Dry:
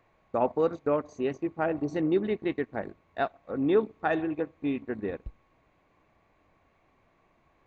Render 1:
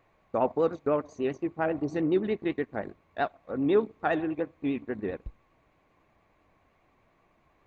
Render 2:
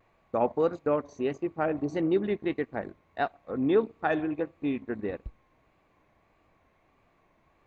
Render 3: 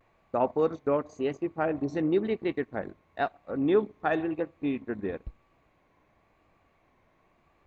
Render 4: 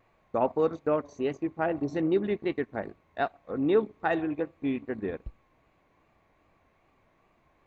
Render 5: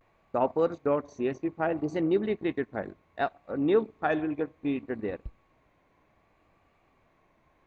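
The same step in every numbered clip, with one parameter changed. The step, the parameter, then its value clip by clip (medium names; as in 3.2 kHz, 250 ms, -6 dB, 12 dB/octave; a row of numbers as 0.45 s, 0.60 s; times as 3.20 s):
vibrato, rate: 10 Hz, 1.6 Hz, 0.96 Hz, 2.5 Hz, 0.64 Hz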